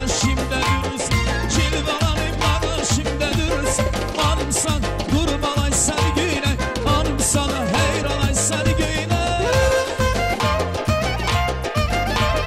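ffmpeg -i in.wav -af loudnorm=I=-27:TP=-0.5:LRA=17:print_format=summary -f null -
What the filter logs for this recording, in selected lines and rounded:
Input Integrated:    -19.8 LUFS
Input True Peak:      -5.4 dBTP
Input LRA:             0.9 LU
Input Threshold:     -29.8 LUFS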